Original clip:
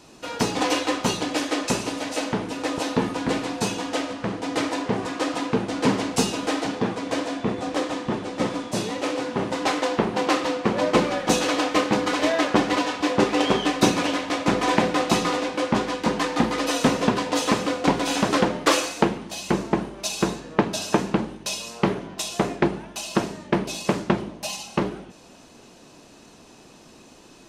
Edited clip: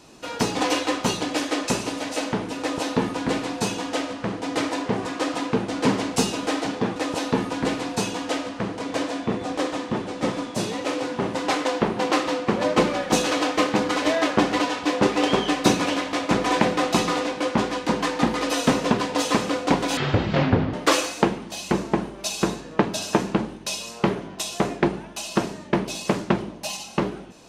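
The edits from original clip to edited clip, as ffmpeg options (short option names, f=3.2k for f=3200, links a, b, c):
-filter_complex "[0:a]asplit=5[a][b][c][d][e];[a]atrim=end=6.962[f];[b]atrim=start=2.598:end=4.432[g];[c]atrim=start=6.958:end=18.144[h];[d]atrim=start=18.14:end=18.53,asetpts=PTS-STARTPTS,asetrate=22491,aresample=44100[i];[e]atrim=start=18.526[j];[f][g]acrossfade=d=0.004:c1=hsin:c2=hsin[k];[k][h]acrossfade=d=0.004:c1=hsin:c2=hsin[l];[l][i]acrossfade=d=0.004:c1=hsin:c2=hsin[m];[m][j]acrossfade=d=0.004:c1=hsin:c2=hsin"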